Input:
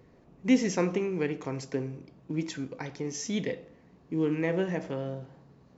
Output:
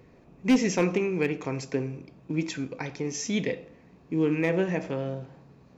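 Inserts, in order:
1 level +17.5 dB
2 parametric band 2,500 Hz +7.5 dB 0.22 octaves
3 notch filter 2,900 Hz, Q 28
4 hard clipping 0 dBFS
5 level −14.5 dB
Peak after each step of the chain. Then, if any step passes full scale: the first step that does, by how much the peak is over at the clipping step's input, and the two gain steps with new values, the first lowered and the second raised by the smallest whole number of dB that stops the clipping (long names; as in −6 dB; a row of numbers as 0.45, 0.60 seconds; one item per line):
+5.0, +6.0, +6.0, 0.0, −14.5 dBFS
step 1, 6.0 dB
step 1 +11.5 dB, step 5 −8.5 dB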